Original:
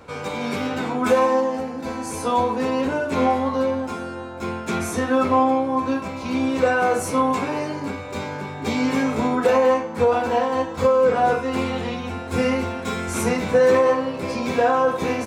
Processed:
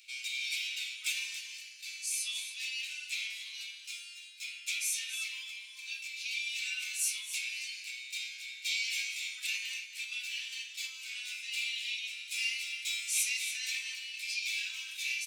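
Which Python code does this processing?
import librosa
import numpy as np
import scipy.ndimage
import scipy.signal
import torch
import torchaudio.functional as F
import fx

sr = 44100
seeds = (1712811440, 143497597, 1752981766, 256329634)

p1 = scipy.signal.sosfilt(scipy.signal.cheby1(5, 1.0, 2400.0, 'highpass', fs=sr, output='sos'), x)
p2 = 10.0 ** (-28.0 / 20.0) * np.tanh(p1 / 10.0 ** (-28.0 / 20.0))
p3 = p1 + (p2 * 10.0 ** (-11.5 / 20.0))
y = p3 + 10.0 ** (-11.0 / 20.0) * np.pad(p3, (int(278 * sr / 1000.0), 0))[:len(p3)]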